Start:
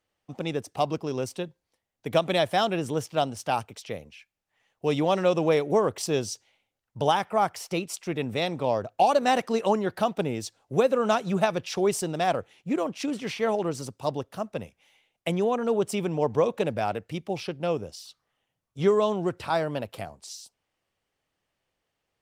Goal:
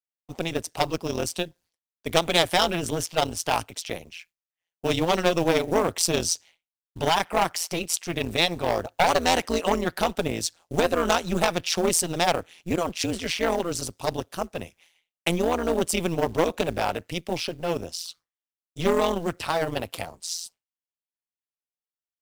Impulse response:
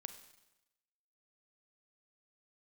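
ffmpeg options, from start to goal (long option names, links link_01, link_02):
-af "lowpass=frequency=3300:poles=1,agate=range=-33dB:threshold=-56dB:ratio=3:detection=peak,acontrast=73,aeval=exprs='0.668*(cos(1*acos(clip(val(0)/0.668,-1,1)))-cos(1*PI/2))+0.266*(cos(2*acos(clip(val(0)/0.668,-1,1)))-cos(2*PI/2))+0.0944*(cos(5*acos(clip(val(0)/0.668,-1,1)))-cos(5*PI/2))':channel_layout=same,crystalizer=i=6:c=0,acrusher=bits=6:mode=log:mix=0:aa=0.000001,tremolo=f=170:d=0.919,volume=-6.5dB"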